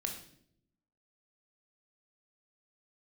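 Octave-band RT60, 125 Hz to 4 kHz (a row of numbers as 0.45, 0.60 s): 1.1, 1.0, 0.80, 0.50, 0.55, 0.55 s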